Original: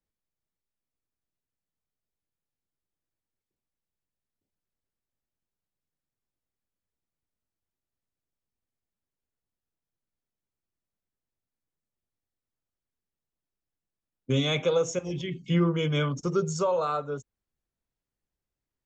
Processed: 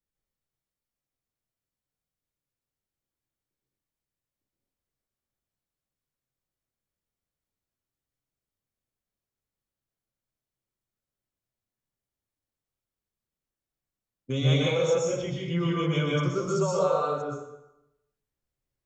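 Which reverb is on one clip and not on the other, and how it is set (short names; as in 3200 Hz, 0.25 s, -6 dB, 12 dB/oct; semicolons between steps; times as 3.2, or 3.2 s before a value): plate-style reverb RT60 0.91 s, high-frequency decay 0.75×, pre-delay 0.11 s, DRR -4 dB; gain -4.5 dB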